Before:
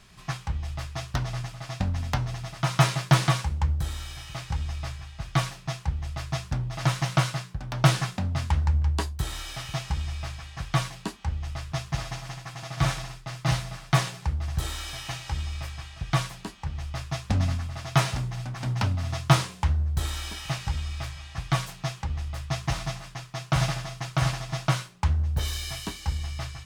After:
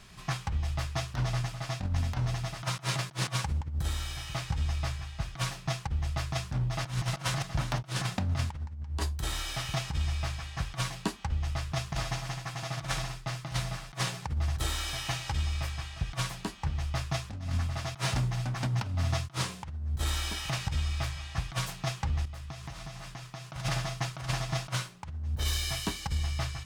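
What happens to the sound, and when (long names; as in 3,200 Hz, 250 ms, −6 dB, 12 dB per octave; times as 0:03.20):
0:06.53–0:07.06: delay throw 360 ms, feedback 35%, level −1.5 dB
0:22.25–0:23.50: downward compressor 10 to 1, threshold −39 dBFS
whole clip: compressor whose output falls as the input rises −28 dBFS, ratio −0.5; every ending faded ahead of time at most 440 dB per second; level −1.5 dB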